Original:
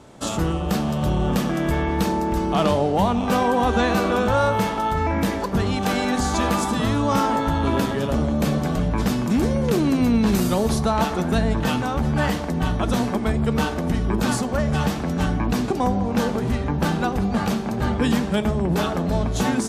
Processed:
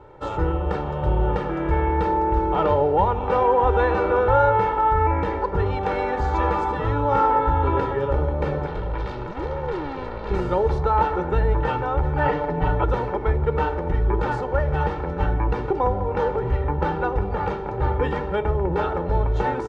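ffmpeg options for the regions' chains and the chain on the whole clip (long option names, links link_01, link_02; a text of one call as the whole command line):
ffmpeg -i in.wav -filter_complex "[0:a]asettb=1/sr,asplit=3[link_01][link_02][link_03];[link_01]atrim=end=8.664[link_04];[link_02]atrim=start=8.66:end=10.31,asetpts=PTS-STARTPTS,afade=type=in:duration=0.004:curve=qsin,afade=type=out:start_time=1.646:duration=0.004:curve=qsin,asoftclip=type=hard:threshold=-25.5dB,equalizer=frequency=4000:width=1.2:gain=7.5[link_05];[link_03]atrim=start=10.306[link_06];[link_04][link_05]acrossfade=duration=0.004:curve1=hsin:curve2=qsin[link_07];[link_07][link_06]acrossfade=duration=0.004:curve1=qsin:curve2=hsin,asettb=1/sr,asplit=3[link_08][link_09][link_10];[link_08]atrim=end=12.254[link_11];[link_09]atrim=start=12.25:end=12.84,asetpts=PTS-STARTPTS,afade=type=in:duration=0.004:curve=qsin,afade=type=out:start_time=0.586:duration=0.004:curve=qsin,acrossover=split=5800[link_12][link_13];[link_13]acompressor=threshold=-53dB:ratio=4:attack=1:release=60[link_14];[link_12][link_14]amix=inputs=2:normalize=0,aecho=1:1:6.9:0.88,atrim=end_sample=26019[link_15];[link_10]atrim=start=12.836[link_16];[link_11][link_15]acrossfade=duration=0.004:curve1=hsin:curve2=qsin[link_17];[link_17][link_16]acrossfade=duration=0.004:curve1=qsin:curve2=hsin,lowpass=1400,equalizer=frequency=190:width_type=o:width=2.3:gain=-6.5,aecho=1:1:2.2:0.82,volume=1.5dB" out.wav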